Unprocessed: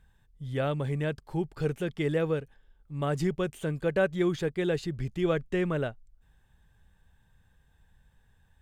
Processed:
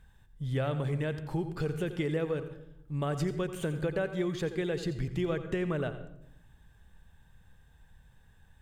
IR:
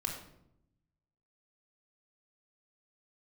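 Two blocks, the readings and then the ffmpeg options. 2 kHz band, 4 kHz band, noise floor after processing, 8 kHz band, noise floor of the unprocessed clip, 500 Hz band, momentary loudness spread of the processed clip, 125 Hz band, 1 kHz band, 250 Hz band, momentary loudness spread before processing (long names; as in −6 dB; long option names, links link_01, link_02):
−3.5 dB, −2.0 dB, −61 dBFS, −0.5 dB, −65 dBFS, −3.5 dB, 6 LU, −1.0 dB, −3.0 dB, −2.5 dB, 7 LU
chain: -filter_complex "[0:a]acompressor=threshold=-32dB:ratio=6,asplit=2[link_01][link_02];[1:a]atrim=start_sample=2205,adelay=86[link_03];[link_02][link_03]afir=irnorm=-1:irlink=0,volume=-12.5dB[link_04];[link_01][link_04]amix=inputs=2:normalize=0,volume=3.5dB"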